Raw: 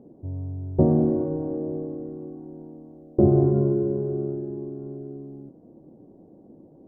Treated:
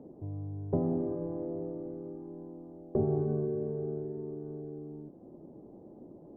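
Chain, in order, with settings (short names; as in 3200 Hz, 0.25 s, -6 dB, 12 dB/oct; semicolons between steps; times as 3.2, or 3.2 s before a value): wide varispeed 1.08×; three-band squash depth 40%; gain -8.5 dB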